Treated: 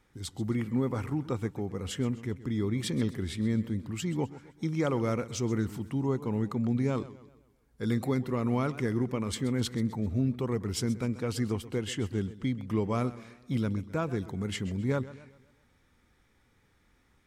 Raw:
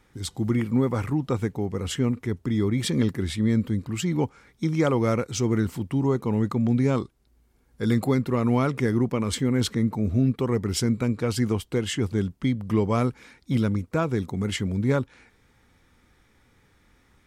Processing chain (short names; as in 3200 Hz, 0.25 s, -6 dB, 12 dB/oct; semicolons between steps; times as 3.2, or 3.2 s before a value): warbling echo 0.13 s, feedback 45%, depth 124 cents, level -16.5 dB; gain -6.5 dB